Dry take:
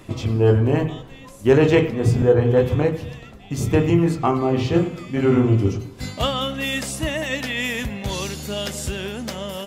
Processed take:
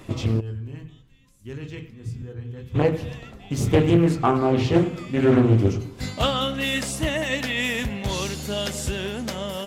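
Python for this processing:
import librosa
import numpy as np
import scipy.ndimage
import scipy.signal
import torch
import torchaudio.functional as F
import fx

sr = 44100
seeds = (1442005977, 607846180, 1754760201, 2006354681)

y = fx.tone_stack(x, sr, knobs='6-0-2', at=(0.39, 2.74), fade=0.02)
y = fx.doppler_dist(y, sr, depth_ms=0.36)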